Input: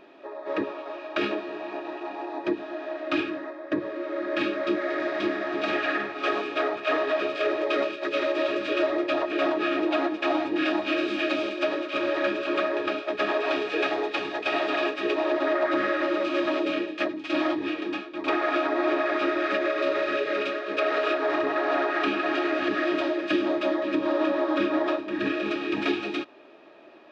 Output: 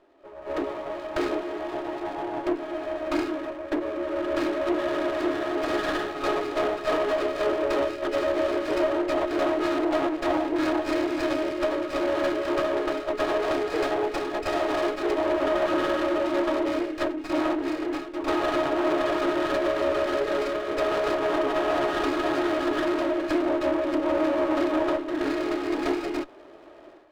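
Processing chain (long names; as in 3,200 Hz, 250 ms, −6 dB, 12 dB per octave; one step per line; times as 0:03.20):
asymmetric clip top −31 dBFS
moving average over 9 samples
automatic gain control gain up to 13 dB
Butterworth high-pass 260 Hz 36 dB per octave
windowed peak hold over 9 samples
level −8.5 dB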